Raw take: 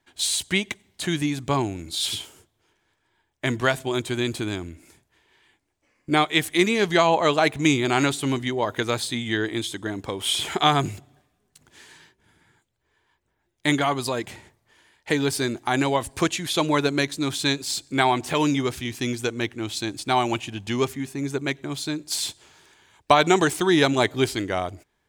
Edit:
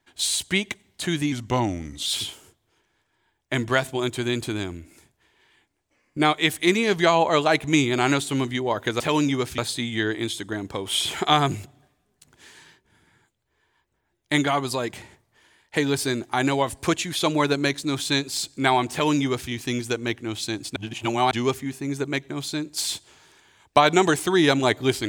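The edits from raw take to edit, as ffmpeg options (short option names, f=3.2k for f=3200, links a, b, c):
-filter_complex "[0:a]asplit=7[a][b][c][d][e][f][g];[a]atrim=end=1.324[h];[b]atrim=start=1.32:end=1.98,asetpts=PTS-STARTPTS,asetrate=39249,aresample=44100,atrim=end_sample=32703,asetpts=PTS-STARTPTS[i];[c]atrim=start=1.976:end=8.922[j];[d]atrim=start=18.258:end=18.842[k];[e]atrim=start=8.918:end=20.102[l];[f]atrim=start=20.098:end=20.652,asetpts=PTS-STARTPTS,areverse[m];[g]atrim=start=20.648[n];[h][i]acrossfade=d=0.004:c1=hsin:c2=hsin[o];[o][j]acrossfade=d=0.004:c1=hsin:c2=hsin[p];[p][k]acrossfade=d=0.004:c1=hsin:c2=hsin[q];[q][l]acrossfade=d=0.004:c1=hsin:c2=hsin[r];[r][m]acrossfade=d=0.004:c1=hsin:c2=hsin[s];[s][n]acrossfade=d=0.004:c1=hsin:c2=hsin"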